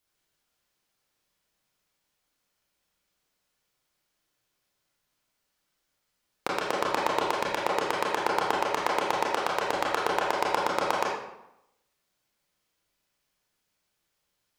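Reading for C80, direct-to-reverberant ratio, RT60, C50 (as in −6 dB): 3.5 dB, −5.0 dB, 0.85 s, 0.5 dB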